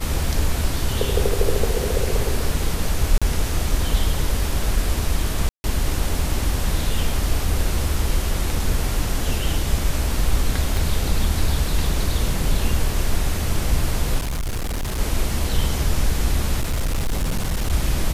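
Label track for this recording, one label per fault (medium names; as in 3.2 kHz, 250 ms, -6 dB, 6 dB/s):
3.180000	3.220000	dropout 36 ms
5.490000	5.640000	dropout 150 ms
10.770000	10.770000	pop
14.180000	15.000000	clipped -21.5 dBFS
16.590000	17.730000	clipped -17.5 dBFS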